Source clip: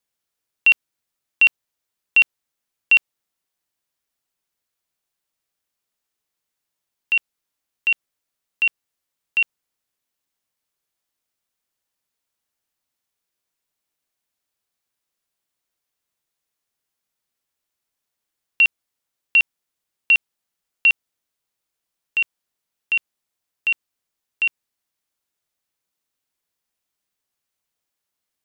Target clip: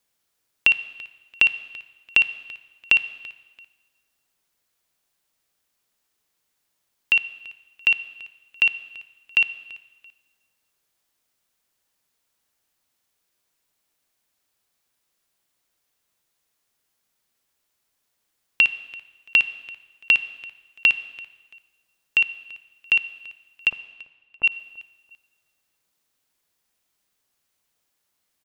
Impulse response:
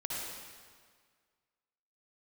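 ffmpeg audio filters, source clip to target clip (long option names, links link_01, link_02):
-filter_complex "[0:a]asplit=3[link_01][link_02][link_03];[link_01]afade=type=out:start_time=23.68:duration=0.02[link_04];[link_02]lowpass=frequency=1100:width=0.5412,lowpass=frequency=1100:width=1.3066,afade=type=in:start_time=23.68:duration=0.02,afade=type=out:start_time=24.43:duration=0.02[link_05];[link_03]afade=type=in:start_time=24.43:duration=0.02[link_06];[link_04][link_05][link_06]amix=inputs=3:normalize=0,acompressor=threshold=-22dB:ratio=5,aecho=1:1:337|674:0.0841|0.0244,asplit=2[link_07][link_08];[1:a]atrim=start_sample=2205,asetrate=57330,aresample=44100[link_09];[link_08][link_09]afir=irnorm=-1:irlink=0,volume=-14.5dB[link_10];[link_07][link_10]amix=inputs=2:normalize=0,volume=5.5dB"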